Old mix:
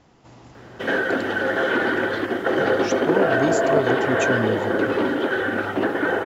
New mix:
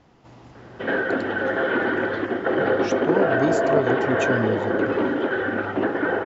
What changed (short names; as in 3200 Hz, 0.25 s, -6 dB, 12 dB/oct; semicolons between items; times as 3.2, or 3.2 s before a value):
speech: add air absorption 79 m; background: add air absorption 290 m